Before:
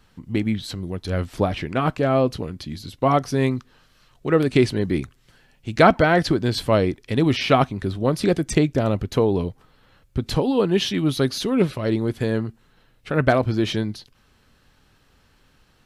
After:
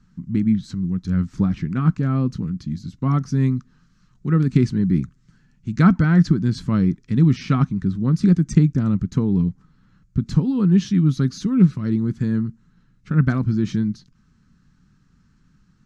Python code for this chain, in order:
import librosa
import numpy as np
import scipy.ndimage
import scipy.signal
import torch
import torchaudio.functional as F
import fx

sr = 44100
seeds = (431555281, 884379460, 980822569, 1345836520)

y = fx.curve_eq(x, sr, hz=(100.0, 180.0, 620.0, 1300.0, 3100.0, 6700.0, 11000.0), db=(0, 11, -21, -4, -15, -3, -23))